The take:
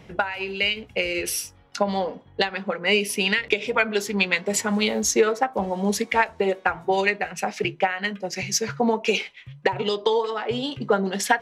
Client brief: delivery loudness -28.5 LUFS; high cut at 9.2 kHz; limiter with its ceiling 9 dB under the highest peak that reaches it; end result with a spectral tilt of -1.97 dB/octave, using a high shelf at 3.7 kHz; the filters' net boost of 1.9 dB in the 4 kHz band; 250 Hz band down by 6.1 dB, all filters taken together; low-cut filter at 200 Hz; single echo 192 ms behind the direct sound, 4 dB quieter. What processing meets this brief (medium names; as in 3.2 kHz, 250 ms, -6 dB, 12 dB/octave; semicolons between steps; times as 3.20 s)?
high-pass 200 Hz; low-pass 9.2 kHz; peaking EQ 250 Hz -5.5 dB; treble shelf 3.7 kHz -4.5 dB; peaking EQ 4 kHz +6 dB; peak limiter -13.5 dBFS; delay 192 ms -4 dB; trim -3.5 dB